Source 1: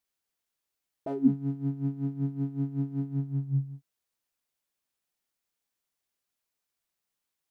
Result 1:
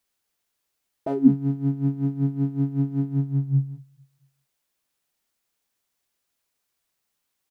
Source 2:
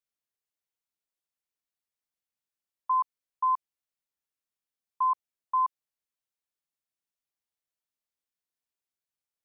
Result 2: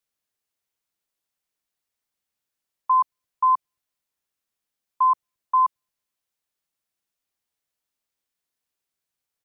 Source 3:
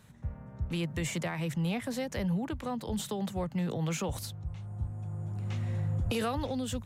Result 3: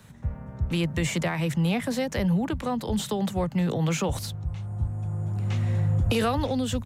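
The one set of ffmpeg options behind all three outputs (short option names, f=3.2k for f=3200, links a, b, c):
-filter_complex "[0:a]acrossover=split=210|580|6500[a][b][c][d];[a]aecho=1:1:222|444|666:0.112|0.0337|0.0101[e];[d]alimiter=level_in=16.5dB:limit=-24dB:level=0:latency=1,volume=-16.5dB[f];[e][b][c][f]amix=inputs=4:normalize=0,volume=7dB"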